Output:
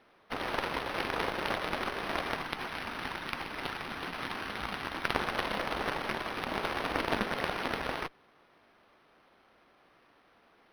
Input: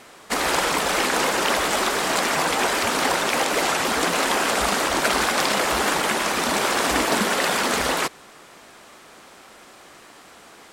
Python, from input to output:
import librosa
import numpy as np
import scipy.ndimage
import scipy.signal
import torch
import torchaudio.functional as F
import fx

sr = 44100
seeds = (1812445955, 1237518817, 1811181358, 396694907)

y = fx.peak_eq(x, sr, hz=540.0, db=-12.5, octaves=0.92, at=(2.36, 5.15))
y = fx.cheby_harmonics(y, sr, harmonics=(2, 3), levels_db=(-12, -11), full_scale_db=-5.5)
y = np.interp(np.arange(len(y)), np.arange(len(y))[::6], y[::6])